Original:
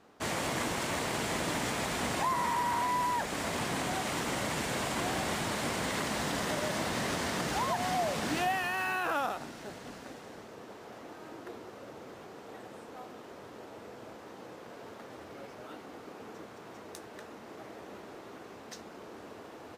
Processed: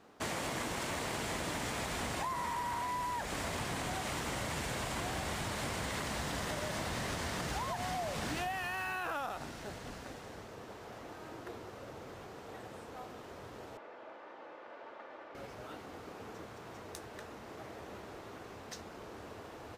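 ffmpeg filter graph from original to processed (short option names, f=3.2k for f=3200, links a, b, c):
-filter_complex "[0:a]asettb=1/sr,asplit=3[a][b][c];[a]atrim=end=13.774[d];[b]atrim=start=13.77:end=15.35,asetpts=PTS-STARTPTS,afade=t=in:d=0.004:c=qsin,afade=t=out:st=1.576:d=0.004:c=qsin,highpass=450,lowpass=2.4k,aecho=1:1:3.4:0.33,atrim=end_sample=69678[e];[c]atrim=start=15.346[f];[d][e]acrossfade=d=0.004:c1=hsin:c2=qsin[g];[g][f]acrossfade=d=0.004:c1=qsin:c2=hsin,asubboost=boost=3.5:cutoff=110,acompressor=threshold=-34dB:ratio=6"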